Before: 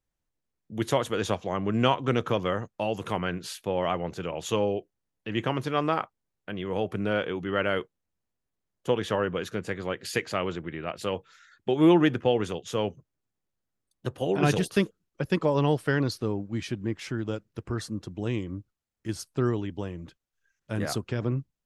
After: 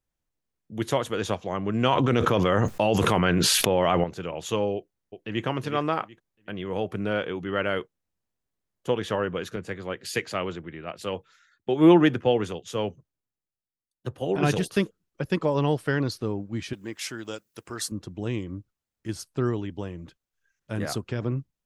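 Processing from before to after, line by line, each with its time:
0:01.92–0:04.04: envelope flattener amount 100%
0:04.75–0:05.45: delay throw 370 ms, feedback 25%, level −9 dB
0:09.56–0:14.36: multiband upward and downward expander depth 40%
0:16.73–0:17.92: RIAA equalisation recording

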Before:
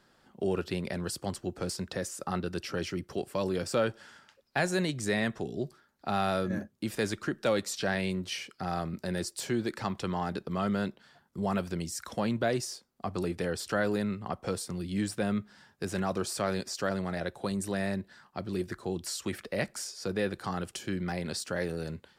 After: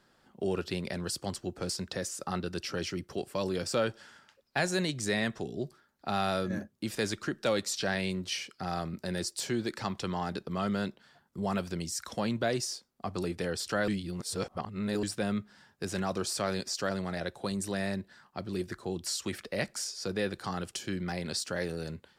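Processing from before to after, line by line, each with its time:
0:13.88–0:15.03: reverse
whole clip: dynamic equaliser 5,100 Hz, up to +5 dB, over −52 dBFS, Q 0.77; level −1.5 dB

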